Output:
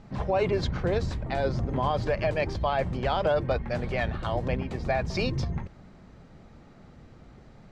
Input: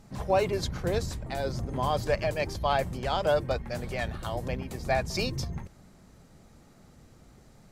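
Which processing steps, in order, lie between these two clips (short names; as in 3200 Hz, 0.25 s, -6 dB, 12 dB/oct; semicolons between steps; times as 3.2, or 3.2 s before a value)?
LPF 3400 Hz 12 dB/oct; limiter -21 dBFS, peak gain reduction 7.5 dB; gain +4.5 dB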